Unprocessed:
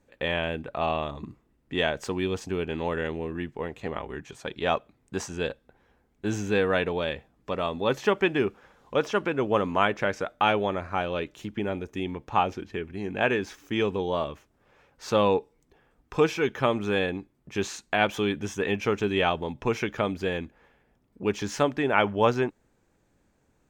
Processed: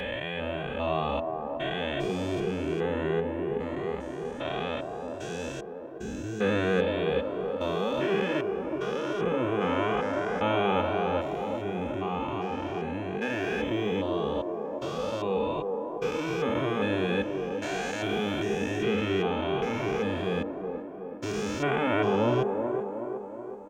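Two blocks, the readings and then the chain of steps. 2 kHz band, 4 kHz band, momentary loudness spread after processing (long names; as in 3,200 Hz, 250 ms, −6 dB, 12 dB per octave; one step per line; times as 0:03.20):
−3.5 dB, −3.0 dB, 9 LU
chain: spectrum averaged block by block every 400 ms
delay with a band-pass on its return 373 ms, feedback 57%, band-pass 480 Hz, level −3 dB
barber-pole flanger 2 ms +2.8 Hz
level +4.5 dB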